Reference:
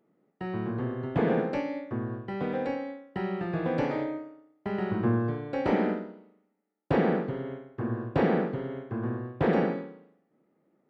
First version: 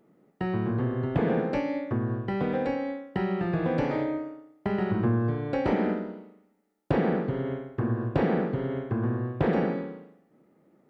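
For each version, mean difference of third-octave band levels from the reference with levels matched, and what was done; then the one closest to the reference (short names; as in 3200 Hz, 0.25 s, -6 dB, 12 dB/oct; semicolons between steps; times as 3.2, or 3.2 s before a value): 2.0 dB: low shelf 100 Hz +8.5 dB; compressor 2:1, threshold -35 dBFS, peak gain reduction 9 dB; gain +7 dB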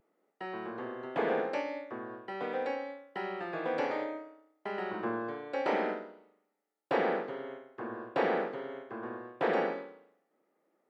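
5.0 dB: HPF 480 Hz 12 dB/oct; vibrato 0.73 Hz 21 cents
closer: first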